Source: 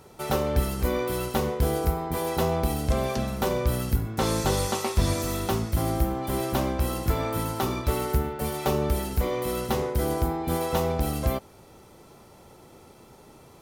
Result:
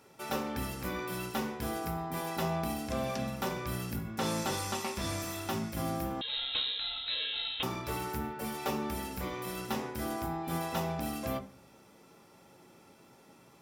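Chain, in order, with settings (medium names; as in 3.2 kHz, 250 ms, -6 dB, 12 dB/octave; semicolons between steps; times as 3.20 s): reverberation RT60 0.45 s, pre-delay 3 ms, DRR 5.5 dB; 6.21–7.63 s: frequency inversion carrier 4 kHz; trim -7.5 dB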